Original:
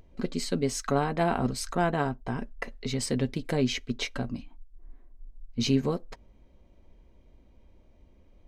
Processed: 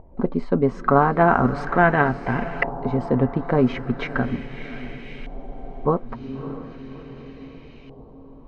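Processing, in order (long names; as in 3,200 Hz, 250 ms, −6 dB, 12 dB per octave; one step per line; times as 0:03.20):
feedback delay with all-pass diffusion 621 ms, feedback 56%, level −13.5 dB
auto-filter low-pass saw up 0.38 Hz 830–2,400 Hz
frozen spectrum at 0:05.30, 0.56 s
level +7.5 dB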